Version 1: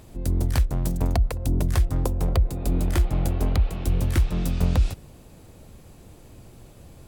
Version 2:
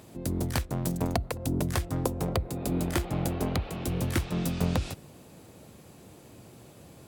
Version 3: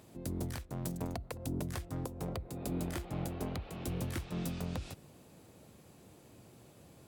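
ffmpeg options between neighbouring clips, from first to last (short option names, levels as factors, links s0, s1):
-af "highpass=130"
-af "alimiter=limit=0.119:level=0:latency=1:release=265,volume=0.447"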